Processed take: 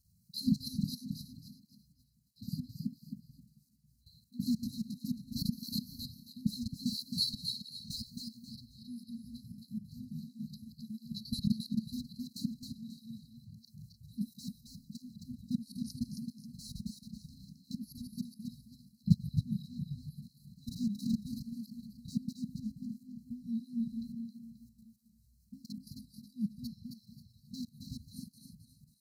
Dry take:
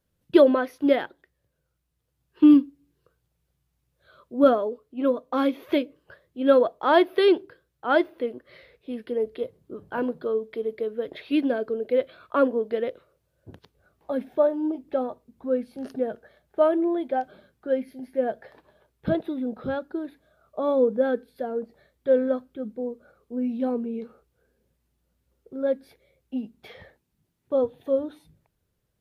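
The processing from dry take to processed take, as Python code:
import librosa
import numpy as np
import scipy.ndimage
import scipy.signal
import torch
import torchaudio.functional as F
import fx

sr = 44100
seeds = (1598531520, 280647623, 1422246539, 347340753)

p1 = fx.reverse_delay_fb(x, sr, ms=138, feedback_pct=58, wet_db=-9)
p2 = fx.low_shelf(p1, sr, hz=100.0, db=-3.0)
p3 = np.sign(p2) * np.maximum(np.abs(p2) - 10.0 ** (-31.5 / 20.0), 0.0)
p4 = p2 + (p3 * 10.0 ** (-10.0 / 20.0))
p5 = fx.level_steps(p4, sr, step_db=20)
p6 = fx.brickwall_bandstop(p5, sr, low_hz=230.0, high_hz=3900.0)
p7 = p6 + fx.echo_feedback(p6, sr, ms=269, feedback_pct=32, wet_db=-5.0, dry=0)
p8 = fx.flanger_cancel(p7, sr, hz=1.5, depth_ms=5.8)
y = p8 * 10.0 ** (14.5 / 20.0)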